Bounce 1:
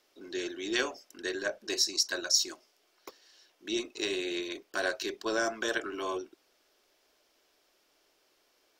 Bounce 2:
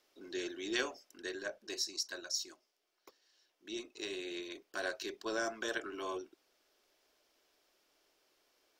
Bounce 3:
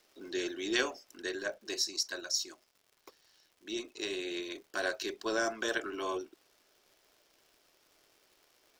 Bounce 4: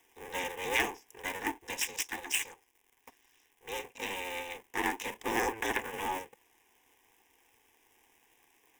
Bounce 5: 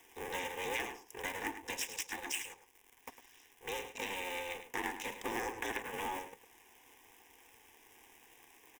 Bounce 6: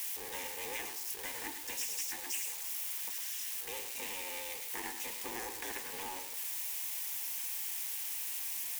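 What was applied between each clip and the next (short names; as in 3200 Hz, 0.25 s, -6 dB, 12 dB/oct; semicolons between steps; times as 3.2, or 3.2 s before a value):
vocal rider within 5 dB 2 s; gain -8 dB
crackle 170/s -57 dBFS; gain +4.5 dB
cycle switcher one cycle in 2, inverted; fixed phaser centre 890 Hz, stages 8; gain +4.5 dB
compressor 3:1, threshold -45 dBFS, peak gain reduction 16 dB; on a send: echo 0.105 s -11 dB; on the sum: gain +5.5 dB
switching spikes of -27 dBFS; gain -5.5 dB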